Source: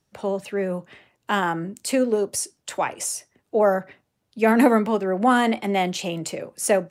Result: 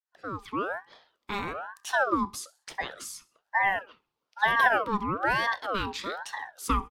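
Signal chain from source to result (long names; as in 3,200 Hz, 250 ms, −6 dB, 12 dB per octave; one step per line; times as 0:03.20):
fade in at the beginning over 0.51 s
octave-band graphic EQ 125/250/500/1,000/2,000/4,000/8,000 Hz −10/+5/+8/−11/+4/+7/−5 dB
on a send: repeating echo 65 ms, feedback 40%, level −22.5 dB
on the sum: ring modulator whose carrier an LFO sweeps 1,000 Hz, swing 40%, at 1.1 Hz
level −7.5 dB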